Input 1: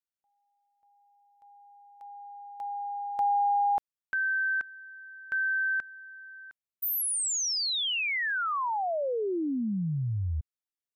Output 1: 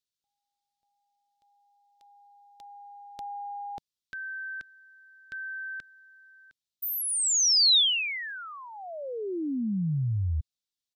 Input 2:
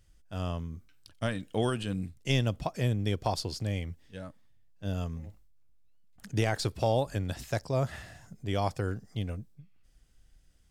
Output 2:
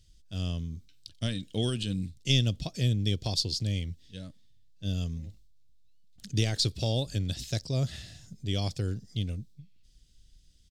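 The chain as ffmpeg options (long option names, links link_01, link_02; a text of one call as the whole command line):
ffmpeg -i in.wav -af "firequalizer=gain_entry='entry(150,0);entry(910,-17);entry(3700,8);entry(11000,-4)':delay=0.05:min_phase=1,volume=2.5dB" out.wav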